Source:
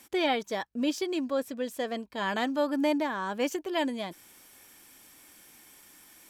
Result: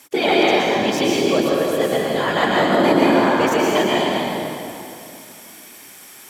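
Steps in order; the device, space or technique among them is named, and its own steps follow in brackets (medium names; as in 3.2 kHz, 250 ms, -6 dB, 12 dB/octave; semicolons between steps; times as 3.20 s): whispering ghost (whisper effect; high-pass 220 Hz 6 dB/octave; reverberation RT60 2.7 s, pre-delay 109 ms, DRR -5 dB); trim +8 dB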